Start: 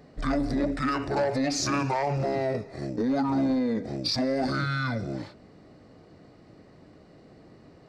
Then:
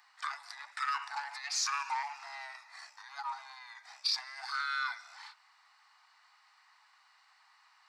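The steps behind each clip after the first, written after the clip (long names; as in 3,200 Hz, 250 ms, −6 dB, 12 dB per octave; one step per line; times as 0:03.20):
downward compressor, threshold −27 dBFS, peak gain reduction 5.5 dB
Butterworth high-pass 860 Hz 72 dB per octave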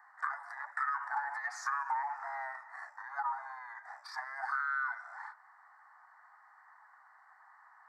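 drawn EQ curve 270 Hz 0 dB, 710 Hz +9 dB, 1,200 Hz +6 dB, 1,800 Hz +8 dB, 2,600 Hz −27 dB, 3,900 Hz −24 dB, 7,900 Hz −11 dB
downward compressor, threshold −31 dBFS, peak gain reduction 8 dB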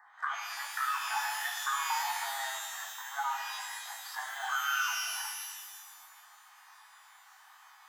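reverb with rising layers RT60 1.4 s, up +12 semitones, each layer −2 dB, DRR 3.5 dB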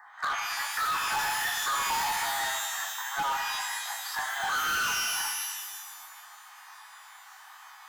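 gain into a clipping stage and back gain 33.5 dB
level +7.5 dB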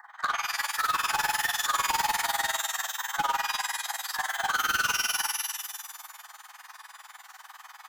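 amplitude modulation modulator 20 Hz, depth 75%
level +5 dB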